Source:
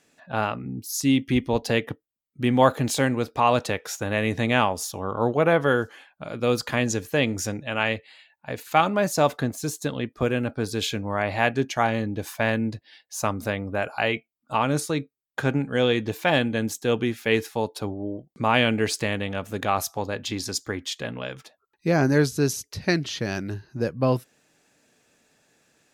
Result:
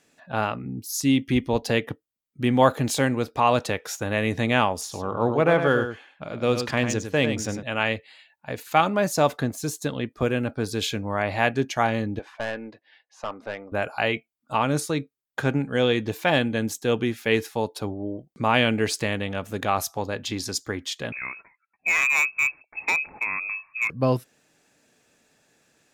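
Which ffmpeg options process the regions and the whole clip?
-filter_complex "[0:a]asettb=1/sr,asplit=3[a][b][c];[a]atrim=end=4.814[d];[b]atrim=start=4.81:end=7.63,asetpts=PTS-STARTPTS,afade=t=in:d=0.004:c=qsin,afade=t=out:st=2.816:d=0.004:c=qsin,aecho=1:1:100:0.398,atrim=end_sample=124362,adynamicsmooth=sensitivity=4.5:basefreq=6.9k[e];[c]atrim=start=7.626[f];[d][e]acrossfade=d=0.004:c1=hsin:c2=qsin[g];[g][f]acrossfade=d=0.004:c1=qsin:c2=hsin,asettb=1/sr,asplit=3[h][i][j];[h]atrim=end=12.194[k];[i]atrim=start=12.19:end=13.72,asetpts=PTS-STARTPTS,afade=t=in:d=0.004:c=qsin,afade=t=out:st=1.526:d=0.004:c=qsin,highpass=450,lowpass=2.3k,aeval=exprs='(tanh(12.6*val(0)+0.35)-tanh(0.35))/12.6':c=same[l];[j]atrim=start=13.716[m];[k][l]acrossfade=d=0.004:c1=hsin:c2=qsin[n];[n][m]acrossfade=d=0.004:c1=qsin:c2=hsin,asettb=1/sr,asplit=3[o][p][q];[o]atrim=end=21.124[r];[p]atrim=start=21.12:end=23.9,asetpts=PTS-STARTPTS,afade=t=in:d=0.004:c=qsin,afade=t=out:st=2.776:d=0.004:c=qsin,lowpass=f=2.3k:t=q:w=0.5098,lowpass=f=2.3k:t=q:w=0.6013,lowpass=f=2.3k:t=q:w=0.9,lowpass=f=2.3k:t=q:w=2.563,afreqshift=-2700,volume=16.5dB,asoftclip=hard,volume=-16.5dB[s];[q]atrim=start=23.896[t];[r][s]acrossfade=d=0.004:c1=hsin:c2=qsin[u];[u][t]acrossfade=d=0.004:c1=qsin:c2=hsin"

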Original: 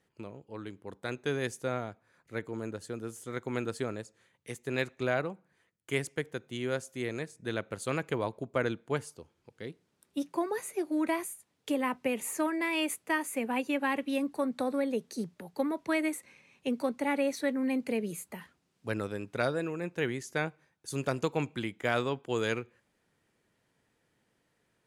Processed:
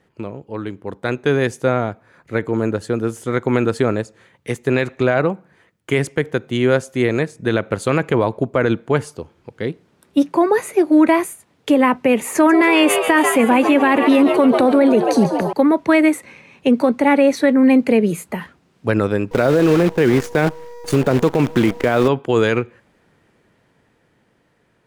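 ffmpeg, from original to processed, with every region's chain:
-filter_complex "[0:a]asettb=1/sr,asplit=3[a][b][c];[a]atrim=end=12.354[d];[b]atrim=start=12.35:end=15.53,asetpts=PTS-STARTPTS,afade=t=in:d=0.004:c=qsin,afade=t=out:st=3.176:d=0.004:c=qsin,acontrast=46,asplit=9[e][f][g][h][i][j][k][l][m];[f]adelay=140,afreqshift=87,volume=-12.5dB[n];[g]adelay=280,afreqshift=174,volume=-16.2dB[o];[h]adelay=420,afreqshift=261,volume=-20dB[p];[i]adelay=560,afreqshift=348,volume=-23.7dB[q];[j]adelay=700,afreqshift=435,volume=-27.5dB[r];[k]adelay=840,afreqshift=522,volume=-31.2dB[s];[l]adelay=980,afreqshift=609,volume=-35dB[t];[m]adelay=1120,afreqshift=696,volume=-38.7dB[u];[e][n][o][p][q][r][s][t][u]amix=inputs=9:normalize=0,atrim=end_sample=140238[v];[c]atrim=start=15.526[w];[d][v]acrossfade=d=0.004:c1=hsin:c2=qsin[x];[x][w]acrossfade=d=0.004:c1=qsin:c2=hsin,asettb=1/sr,asplit=3[y][z][aa];[y]atrim=end=19.314[ab];[z]atrim=start=19.31:end=22.08,asetpts=PTS-STARTPTS,afade=t=in:d=0.004:c=qsin,afade=t=out:st=2.766:d=0.004:c=qsin,equalizer=f=310:w=0.4:g=6,aeval=exprs='val(0)+0.00447*sin(2*PI*480*n/s)':c=same,acrusher=bits=7:dc=4:mix=0:aa=0.000001[ac];[aa]atrim=start=22.076[ad];[ab][ac]acrossfade=d=0.004:c1=hsin:c2=qsin[ae];[ae][ad]acrossfade=d=0.004:c1=qsin:c2=hsin,highshelf=f=3.8k:g=-11.5,dynaudnorm=f=260:g=13:m=3.5dB,alimiter=level_in=19.5dB:limit=-1dB:release=50:level=0:latency=1,volume=-4.5dB"

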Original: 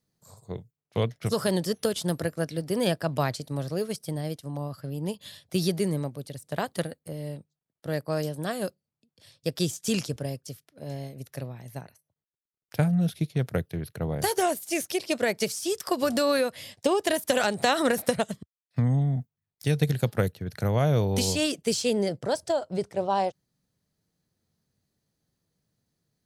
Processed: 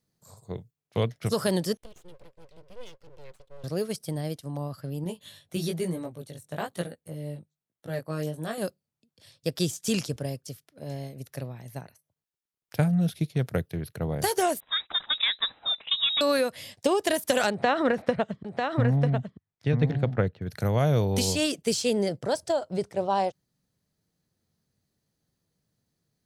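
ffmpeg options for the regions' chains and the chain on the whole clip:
-filter_complex "[0:a]asettb=1/sr,asplit=3[a][b][c];[a]atrim=end=1.774[d];[b]atrim=start=1.77:end=3.64,asetpts=PTS-STARTPTS,afade=t=in:d=0.004:c=qsin,afade=t=out:st=1.866:d=0.004:c=qsin,asplit=3[e][f][g];[e]bandpass=f=270:t=q:w=8,volume=0dB[h];[f]bandpass=f=2.29k:t=q:w=8,volume=-6dB[i];[g]bandpass=f=3.01k:t=q:w=8,volume=-9dB[j];[h][i][j]amix=inputs=3:normalize=0,equalizer=f=1.1k:w=0.59:g=-14,aeval=exprs='abs(val(0))':c=same[k];[c]atrim=start=3.636[l];[d][k]acrossfade=d=0.004:c1=hsin:c2=qsin[m];[m][l]acrossfade=d=0.004:c1=qsin:c2=hsin,asettb=1/sr,asplit=3[n][o][p];[n]atrim=end=5.044[q];[o]atrim=start=5.04:end=8.58,asetpts=PTS-STARTPTS,afade=t=in:d=0.004:c=qsin,afade=t=out:st=3.536:d=0.004:c=qsin,bandreject=f=4.9k:w=5.4,flanger=delay=17:depth=3.1:speed=1.1[r];[p]atrim=start=8.576[s];[q][r]acrossfade=d=0.004:c1=hsin:c2=qsin[t];[t][s]acrossfade=d=0.004:c1=qsin:c2=hsin,asettb=1/sr,asplit=3[u][v][w];[u]atrim=end=14.604[x];[v]atrim=start=14.6:end=16.21,asetpts=PTS-STARTPTS,afade=t=in:d=0.004:c=qsin,afade=t=out:st=1.606:d=0.004:c=qsin,volume=17.5dB,asoftclip=hard,volume=-17.5dB,lowpass=f=3.4k:t=q:w=0.5098,lowpass=f=3.4k:t=q:w=0.6013,lowpass=f=3.4k:t=q:w=0.9,lowpass=f=3.4k:t=q:w=2.563,afreqshift=-4000,bandreject=f=380:w=7.9[y];[w]atrim=start=16.206[z];[x][y]acrossfade=d=0.004:c1=hsin:c2=qsin[aa];[aa][z]acrossfade=d=0.004:c1=qsin:c2=hsin,asettb=1/sr,asplit=3[ab][ac][ad];[ab]atrim=end=17.504[ae];[ac]atrim=start=17.5:end=20.42,asetpts=PTS-STARTPTS,afade=t=in:d=0.004:c=qsin,afade=t=out:st=2.916:d=0.004:c=qsin,lowpass=2.4k,aecho=1:1:945:0.562,atrim=end_sample=128772[af];[ad]atrim=start=20.416[ag];[ae][af]acrossfade=d=0.004:c1=hsin:c2=qsin[ah];[ah][ag]acrossfade=d=0.004:c1=qsin:c2=hsin"

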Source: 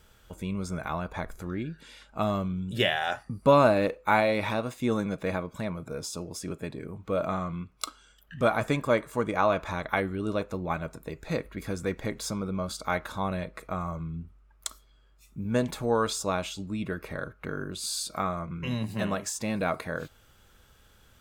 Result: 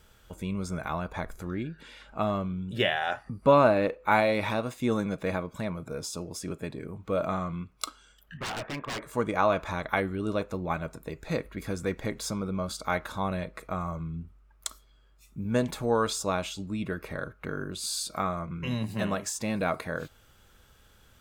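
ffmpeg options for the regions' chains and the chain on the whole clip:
-filter_complex "[0:a]asettb=1/sr,asplit=3[a][b][c];[a]atrim=end=1.674[d];[b]atrim=start=1.67:end=4.11,asetpts=PTS-STARTPTS,afade=t=in:d=0.004:c=qsin,afade=t=out:st=2.436:d=0.004:c=qsin,bass=f=250:g=-2,treble=f=4k:g=-8,acompressor=mode=upward:threshold=-42dB:ratio=2.5:attack=3.2:release=140:knee=2.83:detection=peak[e];[c]atrim=start=4.106[f];[d][e]acrossfade=d=0.004:c1=hsin:c2=qsin[g];[g][f]acrossfade=d=0.004:c1=qsin:c2=hsin,asettb=1/sr,asplit=3[h][i][j];[h]atrim=end=8.374[k];[i]atrim=start=8.37:end=9.02,asetpts=PTS-STARTPTS,afade=t=in:d=0.004:c=qsin,afade=t=out:st=0.646:d=0.004:c=qsin,lowpass=f=2.5k:w=0.5412,lowpass=f=2.5k:w=1.3066,lowshelf=f=250:g=-10.5,aeval=exprs='0.0355*(abs(mod(val(0)/0.0355+3,4)-2)-1)':c=same[l];[j]atrim=start=9.016[m];[k][l]acrossfade=d=0.004:c1=hsin:c2=qsin[n];[n][m]acrossfade=d=0.004:c1=qsin:c2=hsin"

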